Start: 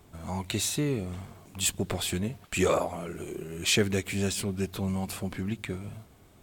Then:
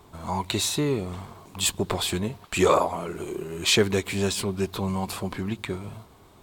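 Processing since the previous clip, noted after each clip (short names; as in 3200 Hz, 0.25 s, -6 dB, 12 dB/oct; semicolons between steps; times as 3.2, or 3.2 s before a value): fifteen-band EQ 400 Hz +4 dB, 1000 Hz +10 dB, 4000 Hz +5 dB; gain +1.5 dB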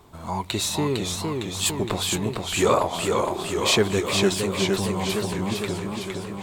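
warbling echo 0.459 s, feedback 67%, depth 136 cents, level -4 dB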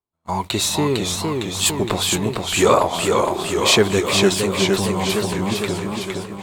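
gate -32 dBFS, range -45 dB; low shelf 160 Hz -3 dB; gain +5.5 dB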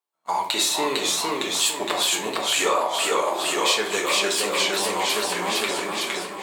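HPF 600 Hz 12 dB/oct; compressor 4:1, threshold -24 dBFS, peak gain reduction 11.5 dB; on a send at -2 dB: reverb RT60 0.50 s, pre-delay 4 ms; on the sum: gain +2.5 dB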